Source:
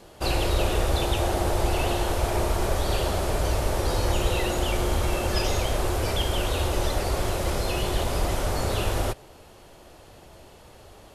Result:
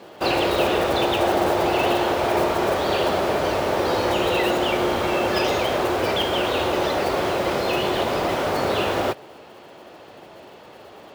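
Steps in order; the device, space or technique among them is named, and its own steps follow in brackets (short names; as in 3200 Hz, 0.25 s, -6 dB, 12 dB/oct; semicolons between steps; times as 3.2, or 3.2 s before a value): early digital voice recorder (BPF 210–3600 Hz; block floating point 5-bit); gain +7.5 dB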